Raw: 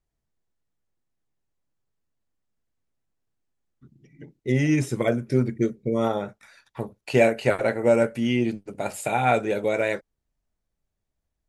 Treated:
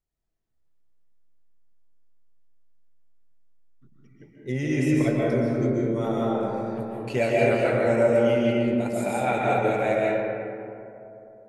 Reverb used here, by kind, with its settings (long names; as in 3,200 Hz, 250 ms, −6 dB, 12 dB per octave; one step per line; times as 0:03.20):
comb and all-pass reverb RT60 2.9 s, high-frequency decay 0.35×, pre-delay 100 ms, DRR −5 dB
level −6.5 dB